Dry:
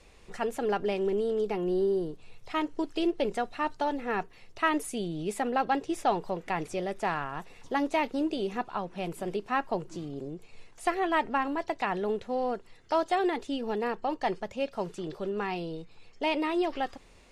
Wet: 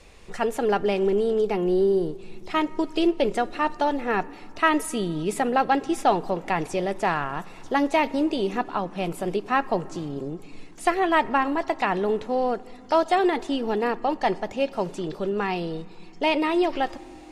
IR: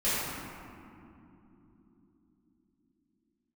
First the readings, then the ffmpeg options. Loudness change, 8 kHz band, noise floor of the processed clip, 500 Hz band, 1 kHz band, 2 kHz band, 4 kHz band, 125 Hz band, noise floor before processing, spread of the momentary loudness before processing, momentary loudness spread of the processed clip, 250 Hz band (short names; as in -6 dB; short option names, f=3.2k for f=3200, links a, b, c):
+6.0 dB, +6.0 dB, -44 dBFS, +6.5 dB, +6.0 dB, +6.0 dB, +6.0 dB, +6.5 dB, -55 dBFS, 8 LU, 8 LU, +6.0 dB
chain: -filter_complex "[0:a]asplit=2[a][b];[1:a]atrim=start_sample=2205[c];[b][c]afir=irnorm=-1:irlink=0,volume=-30.5dB[d];[a][d]amix=inputs=2:normalize=0,volume=6dB"